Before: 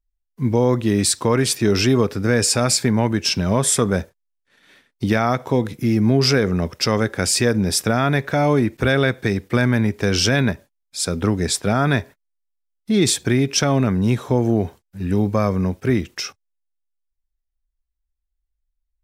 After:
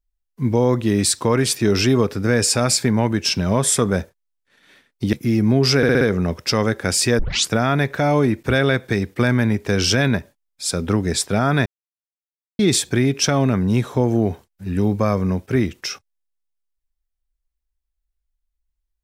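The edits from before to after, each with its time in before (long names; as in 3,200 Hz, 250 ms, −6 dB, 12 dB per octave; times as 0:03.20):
0:05.13–0:05.71: remove
0:06.35: stutter 0.06 s, 5 plays
0:07.53: tape start 0.31 s
0:12.00–0:12.93: silence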